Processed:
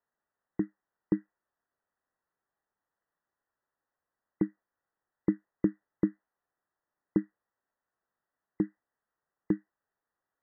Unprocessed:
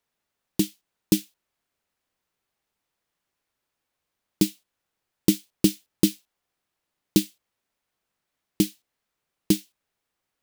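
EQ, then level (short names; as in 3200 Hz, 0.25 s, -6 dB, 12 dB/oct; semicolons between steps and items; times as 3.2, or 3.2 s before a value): brick-wall FIR low-pass 2000 Hz; air absorption 280 m; low shelf 390 Hz -10 dB; 0.0 dB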